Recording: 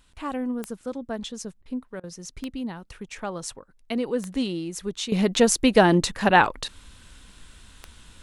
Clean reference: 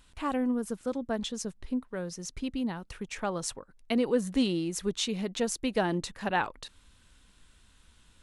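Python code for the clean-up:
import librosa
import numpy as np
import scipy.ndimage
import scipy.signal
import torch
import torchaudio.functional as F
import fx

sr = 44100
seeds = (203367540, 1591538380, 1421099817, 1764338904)

y = fx.fix_declick_ar(x, sr, threshold=10.0)
y = fx.fix_interpolate(y, sr, at_s=(1.62, 2.0), length_ms=35.0)
y = fx.fix_level(y, sr, at_s=5.12, step_db=-11.5)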